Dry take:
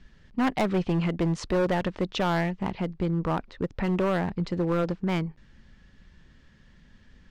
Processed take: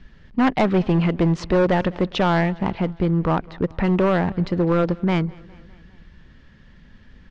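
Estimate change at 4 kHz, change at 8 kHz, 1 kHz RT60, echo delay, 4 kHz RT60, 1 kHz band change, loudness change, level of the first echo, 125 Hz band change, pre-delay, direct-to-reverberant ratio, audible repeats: +4.5 dB, n/a, none, 0.204 s, none, +6.5 dB, +6.5 dB, -24.0 dB, +7.0 dB, none, none, 3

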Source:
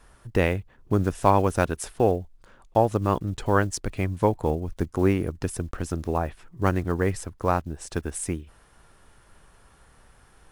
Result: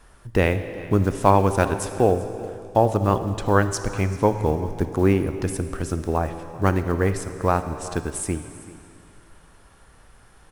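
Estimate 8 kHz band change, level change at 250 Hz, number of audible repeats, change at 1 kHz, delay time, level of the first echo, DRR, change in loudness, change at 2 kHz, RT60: +3.0 dB, +3.0 dB, 1, +3.0 dB, 0.388 s, -19.0 dB, 9.0 dB, +3.0 dB, +3.0 dB, 2.5 s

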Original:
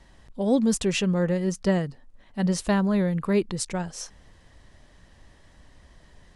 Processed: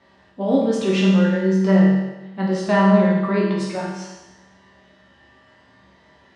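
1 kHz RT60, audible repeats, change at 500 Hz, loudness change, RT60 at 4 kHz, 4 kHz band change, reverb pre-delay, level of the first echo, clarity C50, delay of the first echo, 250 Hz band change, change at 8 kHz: 1.1 s, none, +6.5 dB, +6.5 dB, 1.1 s, +2.5 dB, 5 ms, none, 1.0 dB, none, +7.0 dB, n/a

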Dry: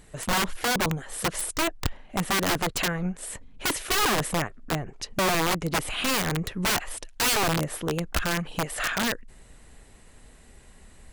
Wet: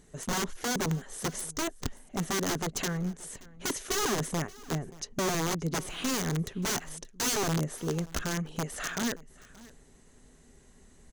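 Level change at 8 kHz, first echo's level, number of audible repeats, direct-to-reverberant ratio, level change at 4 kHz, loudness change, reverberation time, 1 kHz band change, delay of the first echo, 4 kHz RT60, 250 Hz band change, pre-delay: -3.0 dB, -21.5 dB, 1, none, -7.5 dB, -5.5 dB, none, -8.0 dB, 0.578 s, none, -2.5 dB, none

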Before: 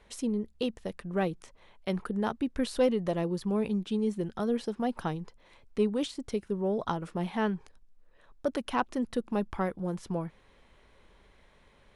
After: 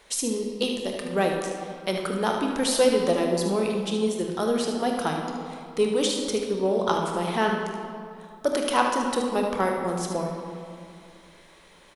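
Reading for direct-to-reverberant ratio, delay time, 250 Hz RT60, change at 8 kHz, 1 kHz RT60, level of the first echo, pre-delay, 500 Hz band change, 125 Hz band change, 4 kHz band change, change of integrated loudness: 1.0 dB, 75 ms, 2.7 s, +17.5 dB, 2.4 s, -8.5 dB, 26 ms, +7.5 dB, +1.5 dB, +12.5 dB, +6.5 dB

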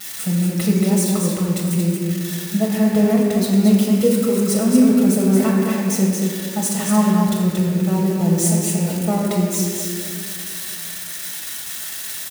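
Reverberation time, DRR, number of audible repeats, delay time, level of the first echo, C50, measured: 2.3 s, -4.5 dB, 1, 0.229 s, -4.5 dB, -1.5 dB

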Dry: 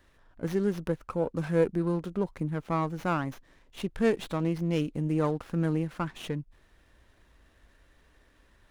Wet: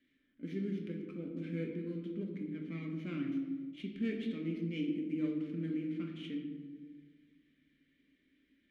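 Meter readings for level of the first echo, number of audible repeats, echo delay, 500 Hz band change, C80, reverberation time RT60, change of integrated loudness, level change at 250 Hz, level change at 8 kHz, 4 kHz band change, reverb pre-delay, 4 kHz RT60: none, none, none, -14.5 dB, 6.5 dB, 1.5 s, -9.0 dB, -5.5 dB, under -20 dB, -8.0 dB, 4 ms, 0.75 s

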